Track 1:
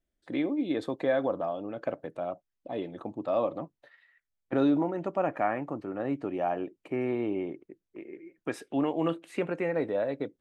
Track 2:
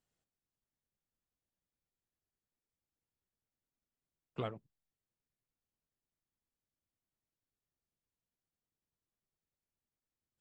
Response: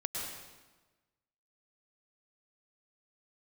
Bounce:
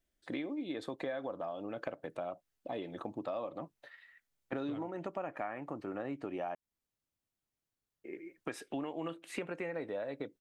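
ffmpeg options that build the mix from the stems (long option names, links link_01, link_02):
-filter_complex "[0:a]tiltshelf=frequency=970:gain=-3,volume=1.5dB,asplit=3[link_01][link_02][link_03];[link_01]atrim=end=6.55,asetpts=PTS-STARTPTS,afade=type=out:start_time=6.546:duration=0.004:curve=hsin[link_04];[link_02]atrim=start=6.55:end=8.04,asetpts=PTS-STARTPTS,volume=0[link_05];[link_03]atrim=start=8.04,asetpts=PTS-STARTPTS,afade=type=in:duration=0.004:curve=hsin[link_06];[link_04][link_05][link_06]concat=n=3:v=0:a=1[link_07];[1:a]adelay=300,volume=2dB[link_08];[link_07][link_08]amix=inputs=2:normalize=0,acompressor=threshold=-36dB:ratio=6"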